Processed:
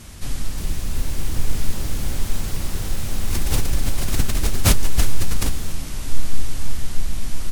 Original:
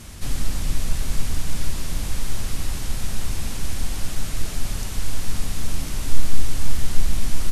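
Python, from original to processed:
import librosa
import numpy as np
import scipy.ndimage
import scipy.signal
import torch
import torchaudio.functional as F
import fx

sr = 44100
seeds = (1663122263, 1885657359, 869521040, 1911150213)

y = fx.rider(x, sr, range_db=10, speed_s=0.5)
y = fx.echo_pitch(y, sr, ms=421, semitones=6, count=3, db_per_echo=-3.0)
y = fx.pre_swell(y, sr, db_per_s=34.0, at=(3.25, 5.55))
y = y * 10.0 ** (-2.0 / 20.0)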